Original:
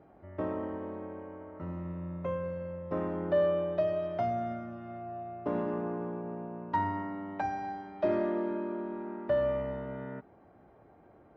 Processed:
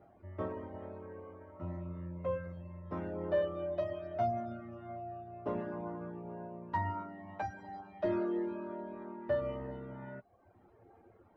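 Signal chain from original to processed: chorus voices 6, 0.19 Hz, delay 10 ms, depth 1.7 ms; reverb removal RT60 0.68 s

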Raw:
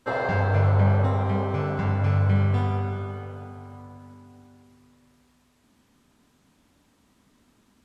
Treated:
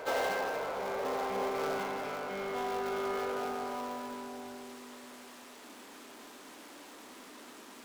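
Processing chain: dead-time distortion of 0.13 ms; reverse; compression 16:1, threshold -34 dBFS, peak gain reduction 19 dB; reverse; high-pass 310 Hz 24 dB/octave; reverse echo 574 ms -10 dB; power-law waveshaper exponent 0.7; trim +5 dB

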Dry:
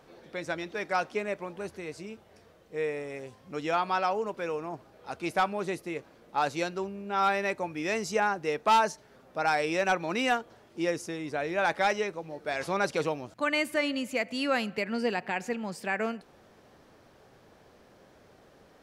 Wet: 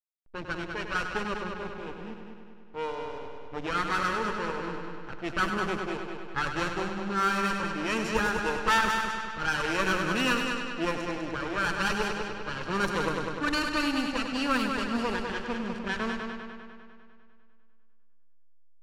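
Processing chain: comb filter that takes the minimum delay 0.7 ms; hysteresis with a dead band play -37 dBFS; multi-head delay 100 ms, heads first and second, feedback 62%, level -8 dB; level-controlled noise filter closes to 2.6 kHz, open at -24.5 dBFS; trim +2 dB

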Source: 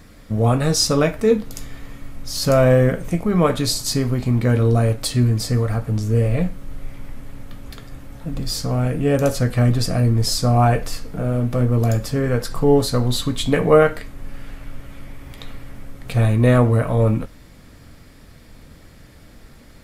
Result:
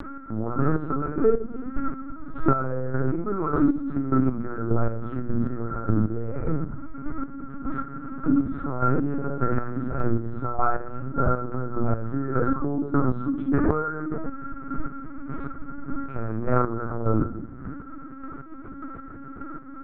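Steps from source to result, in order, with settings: four-pole ladder low-pass 1.4 kHz, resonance 85%; peaking EQ 290 Hz +13 dB 1.1 oct; reverberation RT60 0.65 s, pre-delay 3 ms, DRR -1 dB; LPC vocoder at 8 kHz pitch kept; compression 10:1, threshold -21 dBFS, peak gain reduction 15.5 dB; hum notches 60/120/180/240 Hz; square tremolo 1.7 Hz, depth 60%, duty 30%; upward compressor, threshold -36 dBFS; 7.75–10.19 s: tape noise reduction on one side only encoder only; trim +7 dB

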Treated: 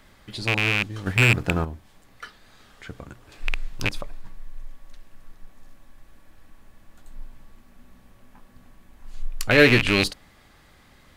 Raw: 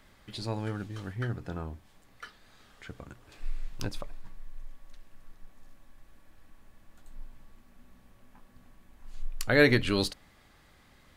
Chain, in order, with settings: rattle on loud lows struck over -34 dBFS, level -14 dBFS; 1.06–1.65 s: waveshaping leveller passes 2; trim +5.5 dB

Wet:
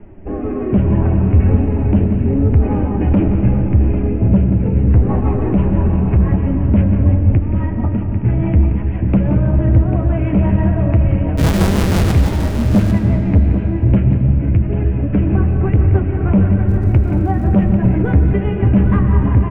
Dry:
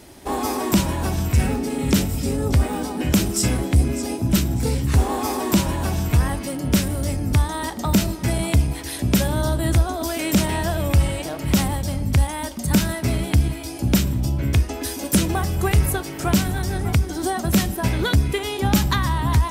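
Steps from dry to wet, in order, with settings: steep low-pass 2.8 kHz 72 dB/octave; tilt EQ -3.5 dB/octave; in parallel at 0 dB: peak limiter -4.5 dBFS, peak gain reduction 11 dB; 7.37–8.25 s: on the sum: compression, threshold -11 dBFS, peak gain reduction 13 dB; flange 1.9 Hz, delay 9.1 ms, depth 1.5 ms, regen -31%; 11.37–12.12 s: Schmitt trigger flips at -21 dBFS; rotary cabinet horn 0.6 Hz, later 6 Hz, at 3.59 s; 16.67–17.49 s: crackle 150 per s -37 dBFS; flange 0.34 Hz, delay 4.8 ms, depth 6.6 ms, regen +58%; saturation -9.5 dBFS, distortion -12 dB; multi-tap echo 176/795/867 ms -10.5/-9.5/-18.5 dB; on a send at -6 dB: reverberation RT60 3.3 s, pre-delay 55 ms; on the sum: trim +3 dB

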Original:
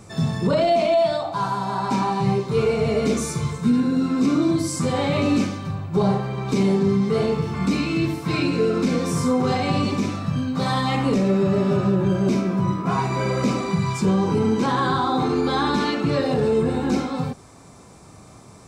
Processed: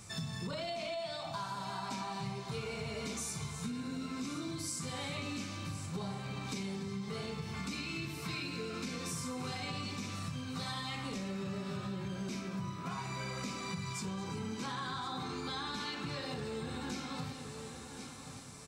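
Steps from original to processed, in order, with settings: amplifier tone stack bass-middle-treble 5-5-5; multi-head delay 357 ms, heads first and third, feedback 42%, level -16.5 dB; compression 6:1, threshold -43 dBFS, peak gain reduction 11 dB; delay 227 ms -17 dB; trim +6 dB

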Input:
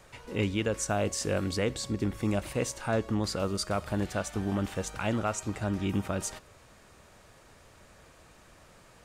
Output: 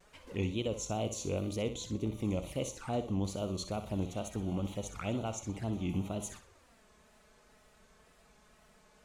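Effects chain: wow and flutter 150 cents; touch-sensitive flanger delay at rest 5.8 ms, full sweep at -29.5 dBFS; flutter echo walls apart 10.6 m, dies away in 0.35 s; trim -4.5 dB

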